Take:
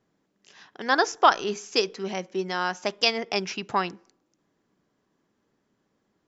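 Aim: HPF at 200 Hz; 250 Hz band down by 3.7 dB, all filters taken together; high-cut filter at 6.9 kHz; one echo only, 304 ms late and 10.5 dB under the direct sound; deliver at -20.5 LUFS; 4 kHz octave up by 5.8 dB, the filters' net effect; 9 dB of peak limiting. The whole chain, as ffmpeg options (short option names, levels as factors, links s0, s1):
-af "highpass=200,lowpass=6900,equalizer=f=250:t=o:g=-3.5,equalizer=f=4000:t=o:g=8.5,alimiter=limit=0.335:level=0:latency=1,aecho=1:1:304:0.299,volume=1.88"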